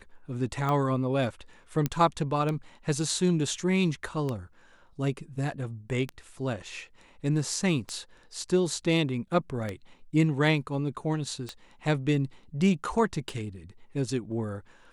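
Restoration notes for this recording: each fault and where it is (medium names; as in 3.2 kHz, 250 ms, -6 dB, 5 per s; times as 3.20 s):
tick 33 1/3 rpm -18 dBFS
1.86 s: pop -13 dBFS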